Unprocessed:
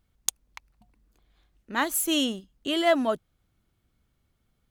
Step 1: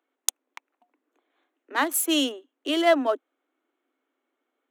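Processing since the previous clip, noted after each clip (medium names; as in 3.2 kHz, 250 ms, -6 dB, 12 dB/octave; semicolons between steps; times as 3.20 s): local Wiener filter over 9 samples; steep high-pass 260 Hz 96 dB/octave; trim +2.5 dB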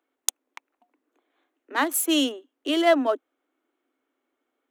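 bass shelf 190 Hz +6.5 dB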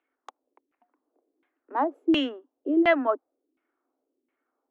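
LFO low-pass saw down 1.4 Hz 280–2600 Hz; trim -4 dB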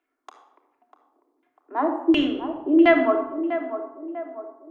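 on a send: band-passed feedback delay 646 ms, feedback 52%, band-pass 610 Hz, level -9 dB; on the sum: simulated room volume 3500 m³, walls furnished, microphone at 3.1 m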